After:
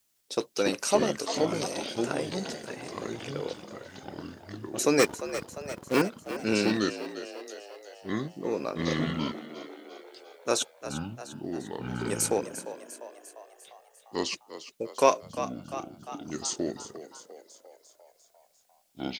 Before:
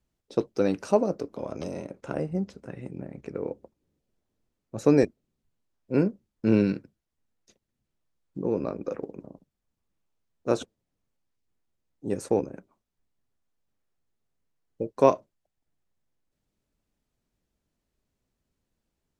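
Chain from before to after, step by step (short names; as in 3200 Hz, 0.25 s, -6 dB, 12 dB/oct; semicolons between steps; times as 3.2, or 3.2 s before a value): echoes that change speed 0.161 s, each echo -5 st, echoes 2; 4.99–6.02 sample leveller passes 2; tilt +4.5 dB/oct; frequency-shifting echo 0.349 s, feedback 59%, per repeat +66 Hz, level -13 dB; in parallel at -9 dB: soft clip -22 dBFS, distortion -9 dB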